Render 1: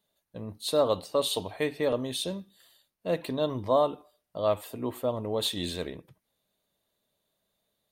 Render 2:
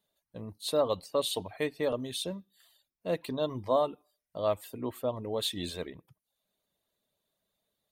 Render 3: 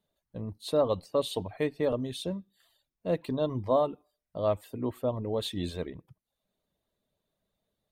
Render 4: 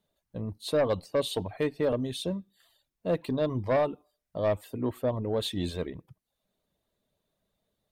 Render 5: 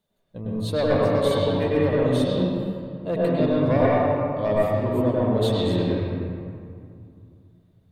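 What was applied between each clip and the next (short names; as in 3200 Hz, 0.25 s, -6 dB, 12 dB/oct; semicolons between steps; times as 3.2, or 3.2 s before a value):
reverb removal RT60 0.52 s; gain -2.5 dB
tilt -2 dB/oct
sine folder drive 4 dB, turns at -14 dBFS; gain -5.5 dB
reverb RT60 2.3 s, pre-delay 99 ms, DRR -7 dB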